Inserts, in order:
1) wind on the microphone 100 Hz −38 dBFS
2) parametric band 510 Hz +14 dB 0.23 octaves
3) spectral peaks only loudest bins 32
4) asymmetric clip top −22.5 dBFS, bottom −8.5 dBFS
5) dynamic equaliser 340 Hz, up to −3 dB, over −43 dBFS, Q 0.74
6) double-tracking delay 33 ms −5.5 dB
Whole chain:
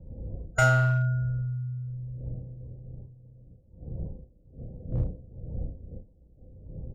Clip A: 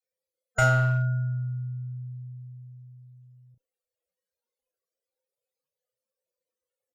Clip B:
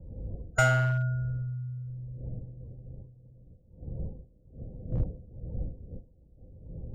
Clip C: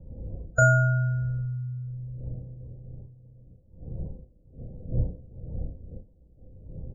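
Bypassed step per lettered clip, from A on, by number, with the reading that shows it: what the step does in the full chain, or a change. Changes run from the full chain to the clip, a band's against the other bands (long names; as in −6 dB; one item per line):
1, change in momentary loudness spread −2 LU
6, change in crest factor +2.0 dB
4, distortion level −9 dB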